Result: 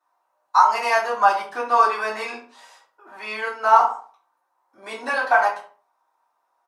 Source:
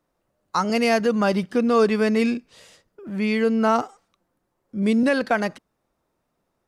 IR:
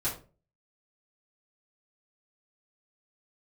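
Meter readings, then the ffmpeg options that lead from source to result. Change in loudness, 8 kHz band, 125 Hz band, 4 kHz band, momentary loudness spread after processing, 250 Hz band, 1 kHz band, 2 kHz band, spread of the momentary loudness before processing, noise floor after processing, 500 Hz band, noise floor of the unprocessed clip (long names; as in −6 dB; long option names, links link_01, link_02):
+2.0 dB, can't be measured, below −25 dB, −2.0 dB, 19 LU, −24.0 dB, +9.0 dB, +4.0 dB, 11 LU, −72 dBFS, −5.0 dB, −75 dBFS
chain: -filter_complex "[0:a]highpass=frequency=920:width_type=q:width=6.9,asplit=2[link_01][link_02];[link_02]adelay=70,lowpass=frequency=1800:poles=1,volume=-11.5dB,asplit=2[link_03][link_04];[link_04]adelay=70,lowpass=frequency=1800:poles=1,volume=0.35,asplit=2[link_05][link_06];[link_06]adelay=70,lowpass=frequency=1800:poles=1,volume=0.35,asplit=2[link_07][link_08];[link_08]adelay=70,lowpass=frequency=1800:poles=1,volume=0.35[link_09];[link_01][link_03][link_05][link_07][link_09]amix=inputs=5:normalize=0[link_10];[1:a]atrim=start_sample=2205,afade=type=out:start_time=0.26:duration=0.01,atrim=end_sample=11907[link_11];[link_10][link_11]afir=irnorm=-1:irlink=0,volume=-6dB"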